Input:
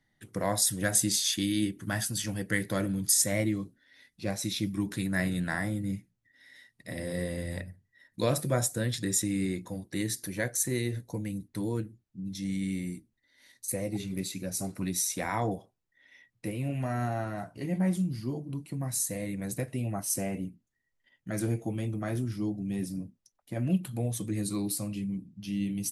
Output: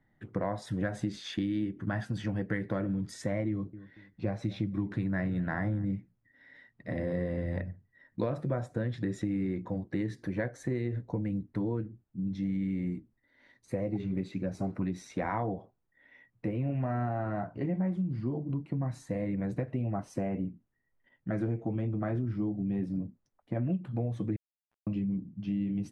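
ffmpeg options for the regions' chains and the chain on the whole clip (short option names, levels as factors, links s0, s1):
-filter_complex "[0:a]asettb=1/sr,asplit=3[s0][s1][s2];[s0]atrim=end=3.504[s3];[s1]atrim=start=3.5:end=5.85,asetpts=PTS-STARTPTS,afade=t=in:d=0.004:c=qsin,afade=t=out:st=2.346:d=0.004:c=qsin,equalizer=f=110:w=3.8:g=5,asplit=2[s4][s5];[s5]adelay=232,lowpass=f=1600:p=1,volume=0.0891,asplit=2[s6][s7];[s7]adelay=232,lowpass=f=1600:p=1,volume=0.35,asplit=2[s8][s9];[s9]adelay=232,lowpass=f=1600:p=1,volume=0.35[s10];[s4][s6][s8][s10]amix=inputs=4:normalize=0,atrim=end_sample=103635[s11];[s2]atrim=start=5.846[s12];[s3][s11]acrossfade=d=0.004:c1=hsin:c2=qsin[s13];[s13][s12]acrossfade=d=0.004:c1=qsin:c2=hsin,asettb=1/sr,asplit=3[s14][s15][s16];[s14]atrim=end=24.364[s17];[s15]atrim=start=24.36:end=24.87,asetpts=PTS-STARTPTS,afade=t=in:d=0.004:c=qsin,afade=t=out:st=0.506:d=0.004:c=qsin,lowpass=f=3400:p=1,aderivative,acrusher=bits=3:mix=0:aa=0.5[s18];[s16]atrim=start=24.866[s19];[s17][s18]acrossfade=d=0.004:c1=hsin:c2=qsin[s20];[s20][s19]acrossfade=d=0.004:c1=qsin:c2=hsin,lowpass=1500,acompressor=threshold=0.0224:ratio=6,volume=1.78"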